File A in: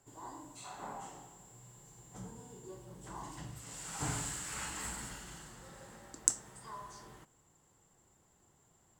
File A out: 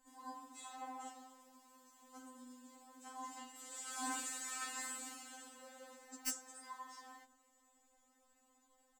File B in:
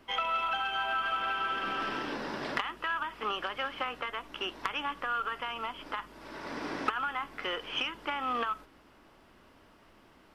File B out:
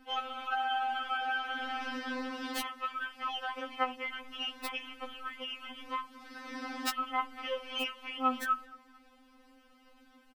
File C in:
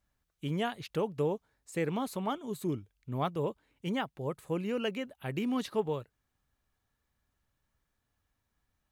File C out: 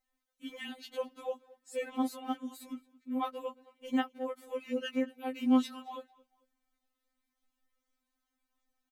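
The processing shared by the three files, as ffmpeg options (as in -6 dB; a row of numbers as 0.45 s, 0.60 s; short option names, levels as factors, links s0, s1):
-filter_complex "[0:a]asplit=2[s0][s1];[s1]adelay=221,lowpass=f=4800:p=1,volume=0.0794,asplit=2[s2][s3];[s3]adelay=221,lowpass=f=4800:p=1,volume=0.33[s4];[s0][s2][s4]amix=inputs=3:normalize=0,aeval=exprs='(mod(8.41*val(0)+1,2)-1)/8.41':c=same,afftfilt=real='re*3.46*eq(mod(b,12),0)':imag='im*3.46*eq(mod(b,12),0)':win_size=2048:overlap=0.75"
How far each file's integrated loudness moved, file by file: -5.0 LU, -2.0 LU, -0.5 LU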